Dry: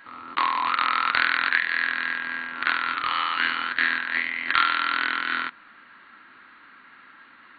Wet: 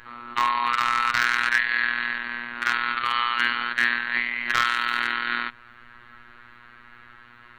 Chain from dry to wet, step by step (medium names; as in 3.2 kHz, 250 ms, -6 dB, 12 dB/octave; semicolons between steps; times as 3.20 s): added noise brown -57 dBFS; overload inside the chain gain 10 dB; robot voice 120 Hz; trim +3 dB